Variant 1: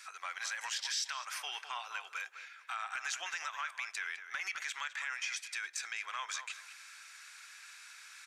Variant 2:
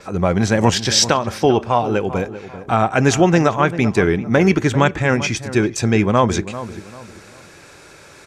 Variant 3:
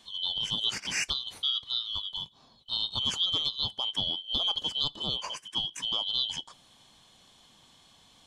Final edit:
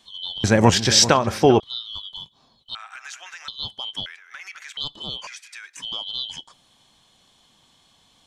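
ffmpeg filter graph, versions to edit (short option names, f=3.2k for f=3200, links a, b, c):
-filter_complex "[0:a]asplit=3[a][b][c];[2:a]asplit=5[d][e][f][g][h];[d]atrim=end=0.442[i];[1:a]atrim=start=0.438:end=1.602[j];[e]atrim=start=1.598:end=2.752[k];[a]atrim=start=2.748:end=3.482[l];[f]atrim=start=3.478:end=4.062[m];[b]atrim=start=4.058:end=4.772[n];[g]atrim=start=4.768:end=5.272[o];[c]atrim=start=5.268:end=5.762[p];[h]atrim=start=5.758[q];[i][j]acrossfade=d=0.004:c1=hsin:c2=hsin[r];[r][k]acrossfade=d=0.004:c1=hsin:c2=hsin[s];[s][l]acrossfade=d=0.004:c1=hsin:c2=hsin[t];[t][m]acrossfade=d=0.004:c1=hsin:c2=hsin[u];[u][n]acrossfade=d=0.004:c1=hsin:c2=hsin[v];[v][o]acrossfade=d=0.004:c1=hsin:c2=hsin[w];[w][p]acrossfade=d=0.004:c1=hsin:c2=hsin[x];[x][q]acrossfade=d=0.004:c1=hsin:c2=hsin"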